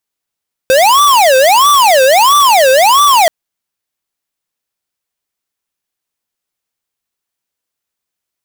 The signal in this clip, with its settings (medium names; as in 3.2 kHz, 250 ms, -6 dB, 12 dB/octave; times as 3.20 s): siren wail 518–1170 Hz 1.5 per s square -7 dBFS 2.58 s